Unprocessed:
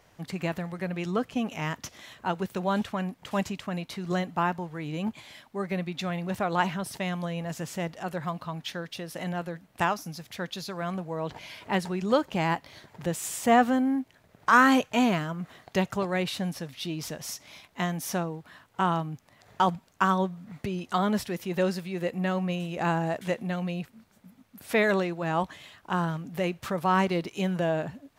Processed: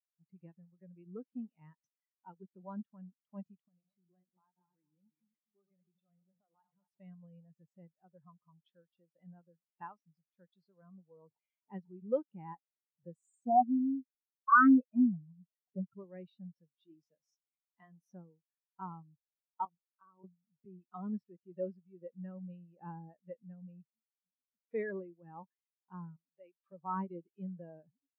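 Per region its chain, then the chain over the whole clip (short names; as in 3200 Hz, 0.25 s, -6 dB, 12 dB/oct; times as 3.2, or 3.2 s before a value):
3.68–6.88 regenerating reverse delay 0.123 s, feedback 56%, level -8 dB + bell 230 Hz -3.5 dB 2.4 oct + compressor 3:1, threshold -39 dBFS
13.27–15.99 spectral contrast raised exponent 2.2 + Doppler distortion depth 0.14 ms
16.68–18.06 low shelf 140 Hz -8 dB + notches 60/120/180/240/300/360 Hz
19.65–20.24 compressor 12:1, threshold -28 dBFS + LPC vocoder at 8 kHz pitch kept
26.16–26.72 HPF 650 Hz 6 dB/oct + notch 1400 Hz, Q 7.2
whole clip: HPF 130 Hz 6 dB/oct; dynamic EQ 660 Hz, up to -8 dB, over -48 dBFS, Q 7.8; spectral expander 2.5:1; gain -4.5 dB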